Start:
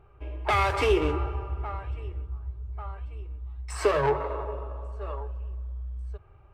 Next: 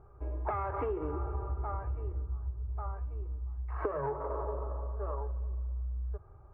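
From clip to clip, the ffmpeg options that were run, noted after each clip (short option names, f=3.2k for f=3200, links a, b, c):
-af "lowpass=f=1.4k:w=0.5412,lowpass=f=1.4k:w=1.3066,acompressor=threshold=-30dB:ratio=16"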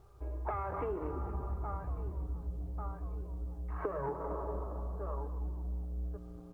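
-filter_complex "[0:a]acrusher=bits=11:mix=0:aa=0.000001,asplit=8[a][b][c][d][e][f][g][h];[b]adelay=233,afreqshift=-120,volume=-12dB[i];[c]adelay=466,afreqshift=-240,volume=-16dB[j];[d]adelay=699,afreqshift=-360,volume=-20dB[k];[e]adelay=932,afreqshift=-480,volume=-24dB[l];[f]adelay=1165,afreqshift=-600,volume=-28.1dB[m];[g]adelay=1398,afreqshift=-720,volume=-32.1dB[n];[h]adelay=1631,afreqshift=-840,volume=-36.1dB[o];[a][i][j][k][l][m][n][o]amix=inputs=8:normalize=0,volume=-3dB"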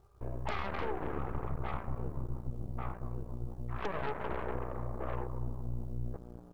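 -af "aeval=exprs='0.0708*(cos(1*acos(clip(val(0)/0.0708,-1,1)))-cos(1*PI/2))+0.02*(cos(4*acos(clip(val(0)/0.0708,-1,1)))-cos(4*PI/2))+0.0158*(cos(8*acos(clip(val(0)/0.0708,-1,1)))-cos(8*PI/2))':c=same,volume=-4dB"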